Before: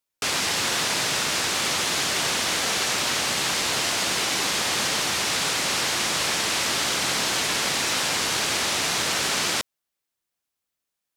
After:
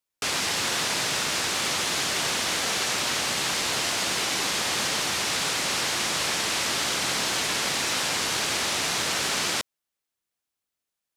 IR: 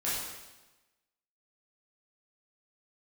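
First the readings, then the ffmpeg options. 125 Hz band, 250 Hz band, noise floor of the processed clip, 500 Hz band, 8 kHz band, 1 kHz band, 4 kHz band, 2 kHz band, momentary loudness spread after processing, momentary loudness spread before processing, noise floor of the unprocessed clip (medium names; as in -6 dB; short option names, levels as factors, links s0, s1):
-2.0 dB, -2.0 dB, under -85 dBFS, -2.0 dB, -2.0 dB, -2.0 dB, -2.0 dB, -2.0 dB, 0 LU, 0 LU, -84 dBFS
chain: -af "equalizer=f=16000:w=3.6:g=-7.5,volume=0.794"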